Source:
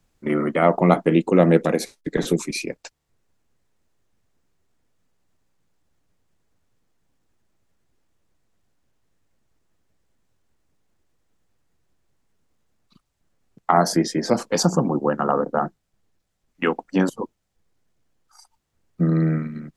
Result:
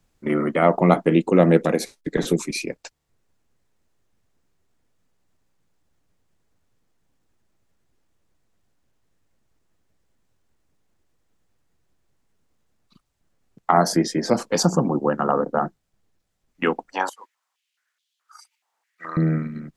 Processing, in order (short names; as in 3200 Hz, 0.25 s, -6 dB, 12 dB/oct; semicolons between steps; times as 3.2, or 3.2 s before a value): 16.92–19.17 stepped high-pass 4.7 Hz 860–3400 Hz